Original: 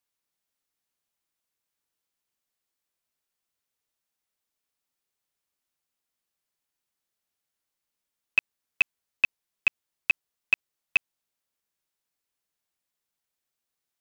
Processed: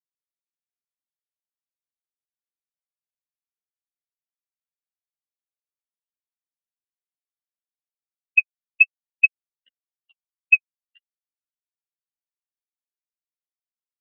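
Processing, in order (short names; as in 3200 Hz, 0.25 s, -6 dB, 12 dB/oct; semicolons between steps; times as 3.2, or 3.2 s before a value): random spectral dropouts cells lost 35%; 9.67–10.1 frequency shift +120 Hz; flange 0.52 Hz, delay 3.2 ms, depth 9.2 ms, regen +30%; AGC gain up to 14.5 dB; spectral expander 2.5:1; gain -1 dB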